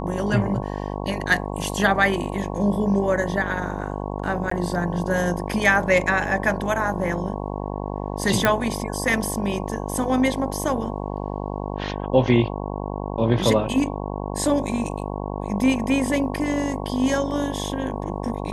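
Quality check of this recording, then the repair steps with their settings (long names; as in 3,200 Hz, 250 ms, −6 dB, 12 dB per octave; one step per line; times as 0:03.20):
mains buzz 50 Hz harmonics 22 −29 dBFS
0:04.50–0:04.51: drop-out 14 ms
0:08.45: click −4 dBFS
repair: click removal
hum removal 50 Hz, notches 22
repair the gap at 0:04.50, 14 ms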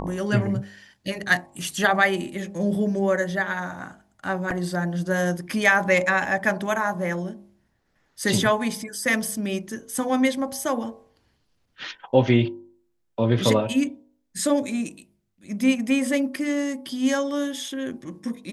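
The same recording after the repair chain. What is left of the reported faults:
none of them is left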